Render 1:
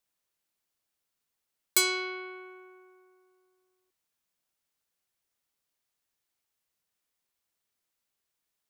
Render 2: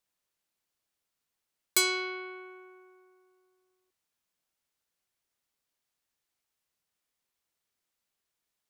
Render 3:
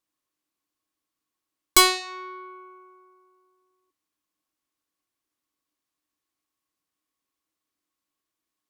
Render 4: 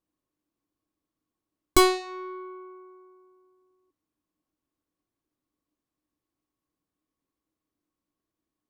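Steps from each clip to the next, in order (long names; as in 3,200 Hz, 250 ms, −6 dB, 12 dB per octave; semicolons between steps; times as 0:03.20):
high-shelf EQ 11,000 Hz −4 dB
hollow resonant body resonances 300/1,100 Hz, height 16 dB, ringing for 80 ms; harmonic generator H 2 −9 dB, 7 −14 dB, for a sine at −10.5 dBFS; level +6.5 dB
tilt shelving filter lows +9 dB, about 820 Hz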